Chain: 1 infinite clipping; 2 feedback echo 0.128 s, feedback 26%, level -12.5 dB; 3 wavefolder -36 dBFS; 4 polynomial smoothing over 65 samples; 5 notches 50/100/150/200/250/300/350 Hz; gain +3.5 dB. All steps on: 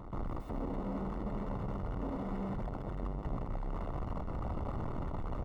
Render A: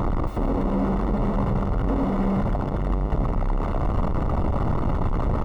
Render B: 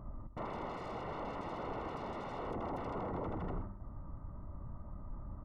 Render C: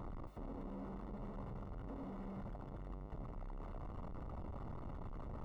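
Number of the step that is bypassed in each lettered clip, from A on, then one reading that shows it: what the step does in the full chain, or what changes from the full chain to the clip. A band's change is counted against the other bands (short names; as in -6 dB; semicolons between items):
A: 3, loudness change +14.5 LU; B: 1, crest factor change +3.5 dB; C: 2, loudness change -9.5 LU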